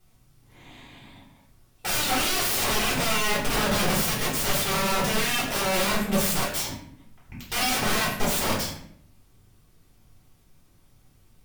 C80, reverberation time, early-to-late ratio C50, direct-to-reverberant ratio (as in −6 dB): 8.0 dB, 0.65 s, 4.5 dB, −6.0 dB